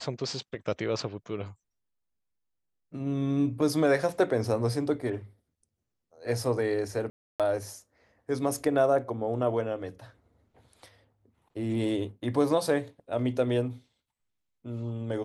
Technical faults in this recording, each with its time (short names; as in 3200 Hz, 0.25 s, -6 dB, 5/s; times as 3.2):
7.1–7.4 gap 0.297 s